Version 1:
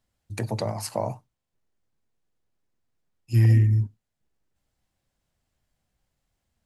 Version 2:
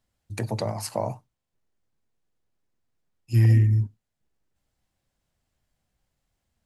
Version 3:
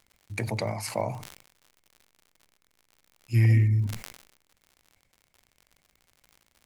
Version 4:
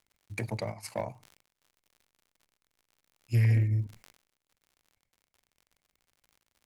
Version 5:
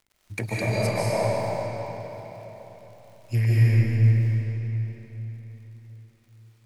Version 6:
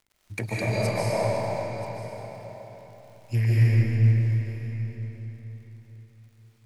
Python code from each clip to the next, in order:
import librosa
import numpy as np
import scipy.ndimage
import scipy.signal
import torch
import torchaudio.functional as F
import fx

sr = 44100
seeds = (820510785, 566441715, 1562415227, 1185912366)

y1 = x
y2 = fx.peak_eq(y1, sr, hz=2200.0, db=14.5, octaves=0.25)
y2 = fx.dmg_crackle(y2, sr, seeds[0], per_s=80.0, level_db=-41.0)
y2 = fx.sustainer(y2, sr, db_per_s=81.0)
y2 = F.gain(torch.from_numpy(y2), -2.5).numpy()
y3 = fx.transient(y2, sr, attack_db=3, sustain_db=-11)
y3 = 10.0 ** (-18.5 / 20.0) * np.tanh(y3 / 10.0 ** (-18.5 / 20.0))
y3 = fx.upward_expand(y3, sr, threshold_db=-41.0, expansion=1.5)
y4 = fx.rider(y3, sr, range_db=4, speed_s=0.5)
y4 = fx.rev_freeverb(y4, sr, rt60_s=4.1, hf_ratio=0.8, predelay_ms=105, drr_db=-7.5)
y5 = y4 + 10.0 ** (-16.5 / 20.0) * np.pad(y4, (int(982 * sr / 1000.0), 0))[:len(y4)]
y5 = fx.doppler_dist(y5, sr, depth_ms=0.1)
y5 = F.gain(torch.from_numpy(y5), -1.0).numpy()